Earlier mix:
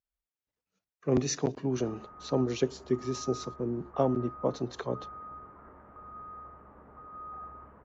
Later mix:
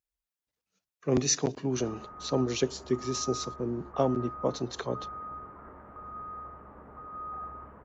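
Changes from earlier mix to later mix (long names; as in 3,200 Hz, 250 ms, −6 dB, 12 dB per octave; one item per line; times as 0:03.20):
speech: add high-shelf EQ 2,800 Hz +9 dB
background +4.0 dB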